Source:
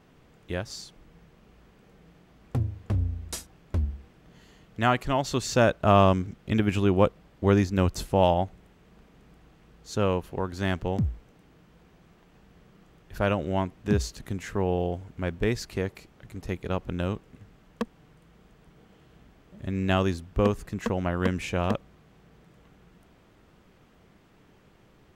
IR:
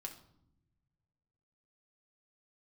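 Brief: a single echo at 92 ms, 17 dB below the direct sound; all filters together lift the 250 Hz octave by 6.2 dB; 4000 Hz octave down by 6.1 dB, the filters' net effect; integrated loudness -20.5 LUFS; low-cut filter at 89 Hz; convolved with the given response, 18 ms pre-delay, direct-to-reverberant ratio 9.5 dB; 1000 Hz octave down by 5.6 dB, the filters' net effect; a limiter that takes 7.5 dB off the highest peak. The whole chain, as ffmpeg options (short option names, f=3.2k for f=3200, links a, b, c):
-filter_complex "[0:a]highpass=89,equalizer=f=250:t=o:g=9,equalizer=f=1k:t=o:g=-8.5,equalizer=f=4k:t=o:g=-8,alimiter=limit=-12.5dB:level=0:latency=1,aecho=1:1:92:0.141,asplit=2[a][b];[1:a]atrim=start_sample=2205,adelay=18[c];[b][c]afir=irnorm=-1:irlink=0,volume=-6dB[d];[a][d]amix=inputs=2:normalize=0,volume=6.5dB"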